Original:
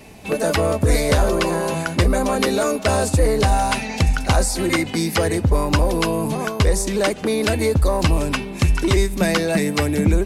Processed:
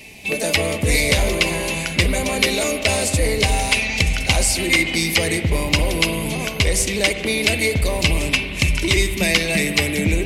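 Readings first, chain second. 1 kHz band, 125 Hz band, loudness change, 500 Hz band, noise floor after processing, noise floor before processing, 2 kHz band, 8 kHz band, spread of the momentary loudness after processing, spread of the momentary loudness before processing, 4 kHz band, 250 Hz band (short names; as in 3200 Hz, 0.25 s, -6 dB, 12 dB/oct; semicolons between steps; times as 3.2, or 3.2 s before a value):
-5.0 dB, -2.5 dB, +1.0 dB, -3.0 dB, -28 dBFS, -30 dBFS, +6.5 dB, +5.0 dB, 3 LU, 3 LU, +7.0 dB, -2.5 dB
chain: resonant high shelf 1800 Hz +7.5 dB, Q 3; spring tank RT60 3.2 s, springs 44/49/55 ms, chirp 65 ms, DRR 8 dB; gain -3 dB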